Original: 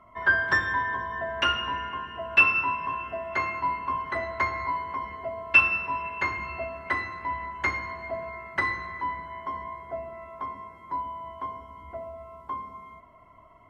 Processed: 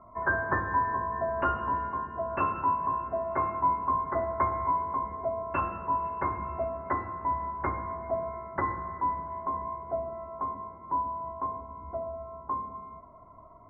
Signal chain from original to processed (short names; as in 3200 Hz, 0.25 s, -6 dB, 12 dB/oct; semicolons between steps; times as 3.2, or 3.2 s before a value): LPF 1200 Hz 24 dB/oct; gain +3 dB